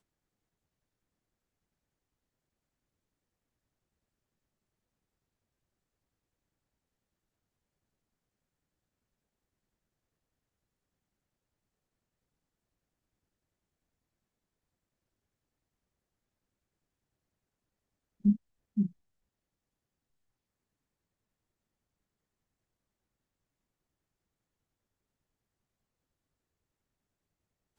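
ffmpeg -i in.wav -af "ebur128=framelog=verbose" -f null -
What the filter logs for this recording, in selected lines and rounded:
Integrated loudness:
  I:         -32.3 LUFS
  Threshold: -42.7 LUFS
Loudness range:
  LRA:         5.3 LU
  Threshold: -57.9 LUFS
  LRA low:   -42.4 LUFS
  LRA high:  -37.1 LUFS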